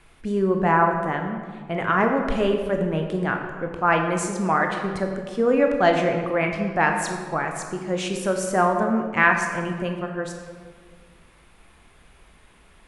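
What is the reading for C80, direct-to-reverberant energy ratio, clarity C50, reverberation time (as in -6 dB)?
6.5 dB, 3.0 dB, 5.0 dB, 1.7 s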